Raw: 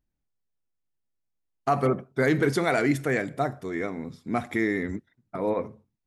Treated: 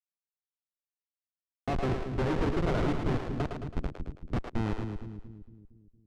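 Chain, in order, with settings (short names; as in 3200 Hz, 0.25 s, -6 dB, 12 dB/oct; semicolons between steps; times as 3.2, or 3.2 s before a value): ending faded out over 1.82 s; high shelf 7500 Hz -11 dB; in parallel at -1 dB: compressor 10:1, threshold -33 dBFS, peak gain reduction 15.5 dB; on the sum: Schmitt trigger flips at -20 dBFS; tape spacing loss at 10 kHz 22 dB; split-band echo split 350 Hz, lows 0.23 s, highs 0.109 s, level -5 dB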